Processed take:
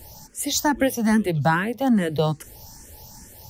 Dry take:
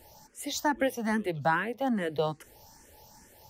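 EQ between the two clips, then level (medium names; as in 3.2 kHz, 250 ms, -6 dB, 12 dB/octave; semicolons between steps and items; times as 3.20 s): tone controls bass +10 dB, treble +8 dB; +5.0 dB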